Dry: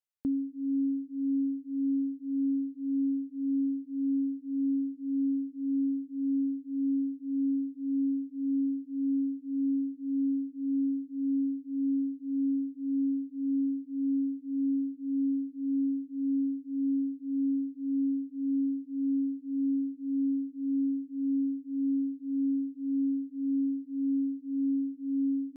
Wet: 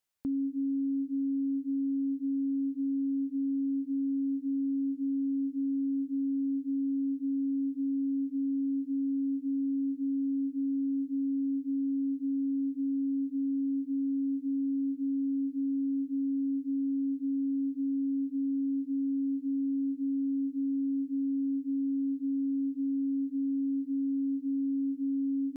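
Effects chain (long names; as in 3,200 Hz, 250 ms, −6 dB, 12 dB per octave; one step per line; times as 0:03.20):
brickwall limiter −35 dBFS, peak gain reduction 11 dB
level +8 dB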